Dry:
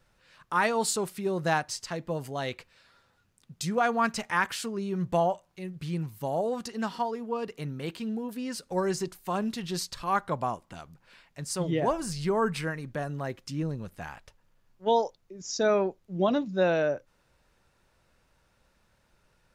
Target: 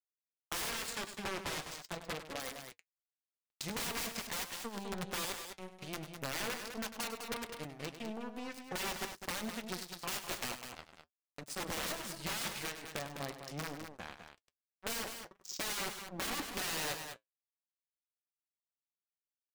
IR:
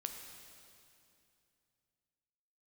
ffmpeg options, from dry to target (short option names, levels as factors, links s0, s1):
-filter_complex "[0:a]lowshelf=f=100:g=-8,acrossover=split=4900[s0][s1];[s0]aeval=exprs='(mod(16.8*val(0)+1,2)-1)/16.8':c=same[s2];[s1]flanger=delay=19:depth=3.3:speed=2.7[s3];[s2][s3]amix=inputs=2:normalize=0,acompressor=threshold=0.00562:ratio=2,asettb=1/sr,asplit=3[s4][s5][s6];[s4]atrim=end=0.714[s7];[s5]atrim=start=0.71:end=2.4,asetpts=PTS-STARTPTS,afade=t=in:d=0.004:c=qsin,afade=t=out:st=1.686:d=0.004:c=qsin,highshelf=f=11000:g=-8.5[s8];[s6]atrim=start=2.396[s9];[s7][s8]acrossfade=d=0.004:c1=hsin:c2=qsin[s10];[s10][s9]acrossfade=d=0.004:c1=qsin:c2=hsin,aeval=exprs='sgn(val(0))*max(abs(val(0))-0.00841,0)':c=same,aecho=1:1:99.13|204.1:0.282|0.398,flanger=delay=3.6:depth=5.4:regen=-63:speed=0.43:shape=sinusoidal,volume=3.76"